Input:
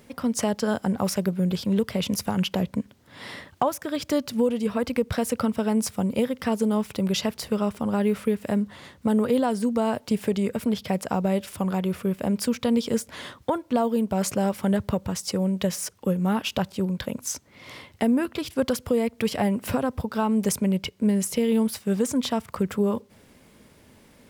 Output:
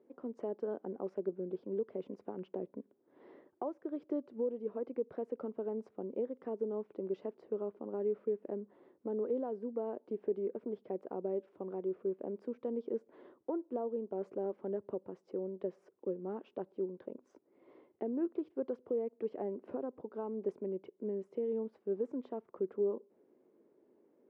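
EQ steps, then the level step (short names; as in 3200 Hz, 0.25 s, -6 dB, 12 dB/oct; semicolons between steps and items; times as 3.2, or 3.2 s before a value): ladder band-pass 400 Hz, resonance 65%; -2.5 dB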